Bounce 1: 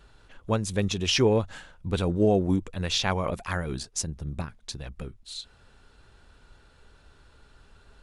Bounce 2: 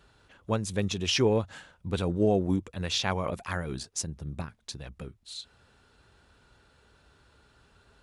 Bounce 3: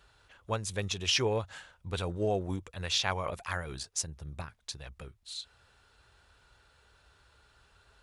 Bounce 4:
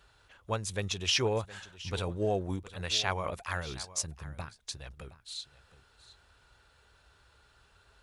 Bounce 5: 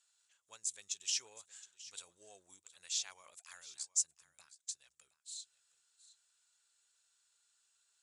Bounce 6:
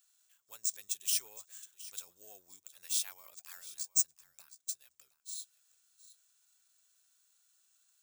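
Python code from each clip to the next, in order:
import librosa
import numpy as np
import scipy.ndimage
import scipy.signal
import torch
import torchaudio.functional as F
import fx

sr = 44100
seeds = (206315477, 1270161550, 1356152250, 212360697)

y1 = scipy.signal.sosfilt(scipy.signal.butter(2, 64.0, 'highpass', fs=sr, output='sos'), x)
y1 = y1 * librosa.db_to_amplitude(-2.5)
y2 = fx.peak_eq(y1, sr, hz=230.0, db=-11.5, octaves=1.8)
y3 = y2 + 10.0 ** (-17.0 / 20.0) * np.pad(y2, (int(717 * sr / 1000.0), 0))[:len(y2)]
y4 = fx.bandpass_q(y3, sr, hz=7500.0, q=4.1)
y4 = y4 * librosa.db_to_amplitude(5.5)
y5 = (np.kron(y4[::3], np.eye(3)[0]) * 3)[:len(y4)]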